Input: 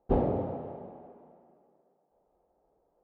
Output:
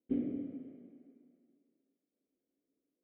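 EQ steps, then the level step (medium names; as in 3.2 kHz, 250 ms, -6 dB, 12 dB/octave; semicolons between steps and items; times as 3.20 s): vowel filter i; distance through air 150 m; +3.0 dB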